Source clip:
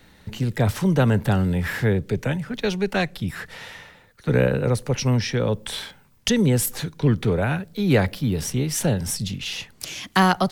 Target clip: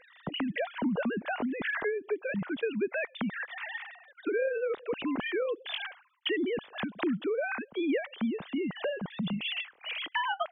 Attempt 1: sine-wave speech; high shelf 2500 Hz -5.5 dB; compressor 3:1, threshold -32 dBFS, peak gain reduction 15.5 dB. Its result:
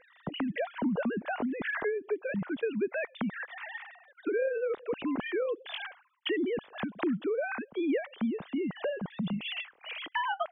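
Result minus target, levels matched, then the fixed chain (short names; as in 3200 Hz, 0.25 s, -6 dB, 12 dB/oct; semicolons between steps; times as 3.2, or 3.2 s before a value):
4000 Hz band -3.5 dB
sine-wave speech; high shelf 2500 Hz +3.5 dB; compressor 3:1, threshold -32 dBFS, peak gain reduction 16 dB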